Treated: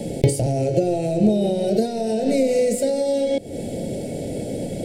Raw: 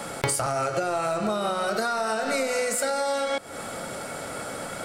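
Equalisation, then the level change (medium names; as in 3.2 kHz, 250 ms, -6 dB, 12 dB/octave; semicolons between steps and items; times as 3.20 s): Butterworth band-stop 1.2 kHz, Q 0.52; tilt shelf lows +8.5 dB, about 1.3 kHz; +5.5 dB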